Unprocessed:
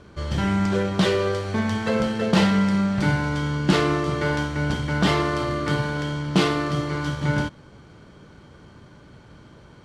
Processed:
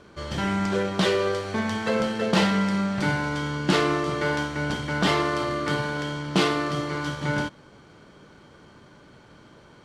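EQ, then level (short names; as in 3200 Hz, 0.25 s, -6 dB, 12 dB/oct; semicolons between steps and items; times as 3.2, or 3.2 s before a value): bell 76 Hz -6 dB 2.7 oct; low shelf 99 Hz -5 dB; 0.0 dB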